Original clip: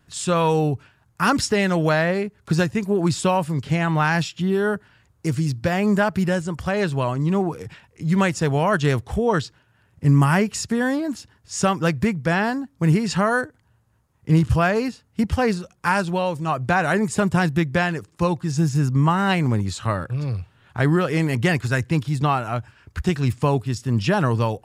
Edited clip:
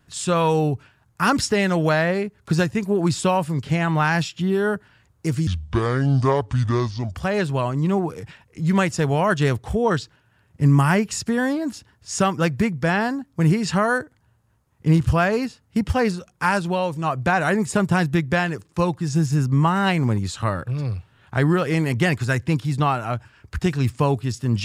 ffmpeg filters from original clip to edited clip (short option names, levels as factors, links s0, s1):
-filter_complex "[0:a]asplit=3[s0][s1][s2];[s0]atrim=end=5.474[s3];[s1]atrim=start=5.47:end=6.58,asetpts=PTS-STARTPTS,asetrate=29106,aresample=44100,atrim=end_sample=74168,asetpts=PTS-STARTPTS[s4];[s2]atrim=start=6.576[s5];[s3][s4]acrossfade=d=0.004:c1=hsin:c2=hsin[s6];[s6][s5]acrossfade=d=0.004:c1=hsin:c2=hsin"